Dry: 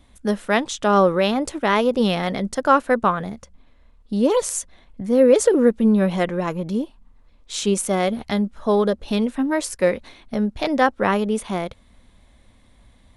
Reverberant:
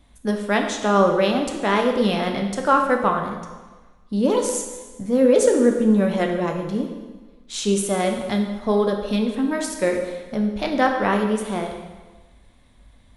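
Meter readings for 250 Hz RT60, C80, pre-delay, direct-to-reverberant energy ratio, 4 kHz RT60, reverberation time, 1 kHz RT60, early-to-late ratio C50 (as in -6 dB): 1.3 s, 7.5 dB, 4 ms, 2.5 dB, 1.2 s, 1.3 s, 1.3 s, 5.5 dB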